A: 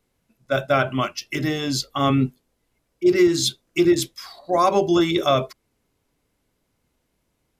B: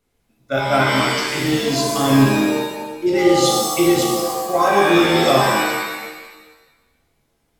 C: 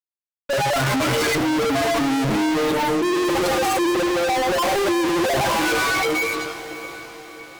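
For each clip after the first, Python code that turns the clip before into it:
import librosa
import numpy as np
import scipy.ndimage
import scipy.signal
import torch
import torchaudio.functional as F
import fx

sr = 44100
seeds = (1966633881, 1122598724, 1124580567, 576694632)

y1 = fx.rev_shimmer(x, sr, seeds[0], rt60_s=1.2, semitones=7, shimmer_db=-2, drr_db=-2.0)
y1 = y1 * 10.0 ** (-1.5 / 20.0)
y2 = fx.spec_expand(y1, sr, power=3.2)
y2 = fx.fuzz(y2, sr, gain_db=45.0, gate_db=-47.0)
y2 = fx.echo_diffused(y2, sr, ms=609, feedback_pct=51, wet_db=-13)
y2 = y2 * 10.0 ** (-6.5 / 20.0)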